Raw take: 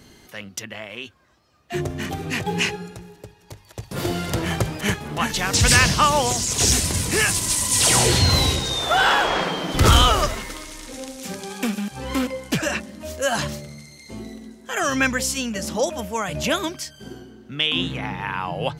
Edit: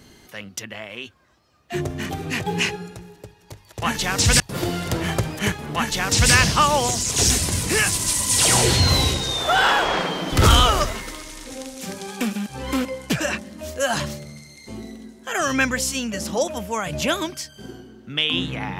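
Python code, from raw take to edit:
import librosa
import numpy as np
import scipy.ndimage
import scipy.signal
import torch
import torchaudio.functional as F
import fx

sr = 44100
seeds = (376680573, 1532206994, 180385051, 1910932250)

y = fx.edit(x, sr, fx.duplicate(start_s=5.17, length_s=0.58, to_s=3.82), tone=tone)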